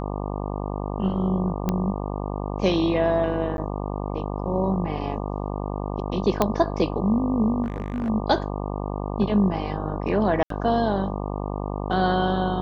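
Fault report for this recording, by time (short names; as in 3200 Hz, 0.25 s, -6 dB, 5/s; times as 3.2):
buzz 50 Hz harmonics 24 -29 dBFS
1.69 pop -11 dBFS
3.57–3.58 gap 11 ms
6.42 pop -6 dBFS
7.63–8.1 clipped -23 dBFS
10.43–10.5 gap 73 ms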